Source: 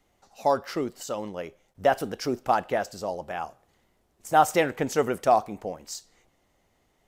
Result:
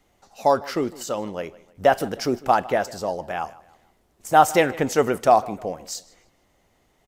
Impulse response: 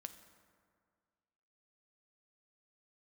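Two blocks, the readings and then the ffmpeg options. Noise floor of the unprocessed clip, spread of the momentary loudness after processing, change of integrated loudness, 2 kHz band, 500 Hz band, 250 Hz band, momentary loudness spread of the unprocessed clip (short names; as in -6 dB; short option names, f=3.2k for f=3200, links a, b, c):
-69 dBFS, 16 LU, +4.5 dB, +4.5 dB, +4.5 dB, +4.5 dB, 16 LU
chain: -filter_complex "[0:a]asplit=2[a][b];[b]adelay=154,lowpass=f=4.6k:p=1,volume=-20dB,asplit=2[c][d];[d]adelay=154,lowpass=f=4.6k:p=1,volume=0.41,asplit=2[e][f];[f]adelay=154,lowpass=f=4.6k:p=1,volume=0.41[g];[a][c][e][g]amix=inputs=4:normalize=0,volume=4.5dB"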